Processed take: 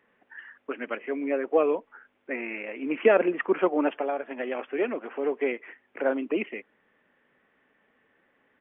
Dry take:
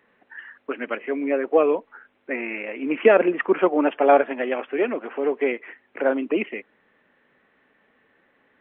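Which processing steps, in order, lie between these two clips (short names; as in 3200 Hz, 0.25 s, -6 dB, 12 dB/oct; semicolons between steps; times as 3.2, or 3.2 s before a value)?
downsampling 8000 Hz; 3.93–4.55 compressor 6:1, threshold -22 dBFS, peak gain reduction 11.5 dB; gain -4.5 dB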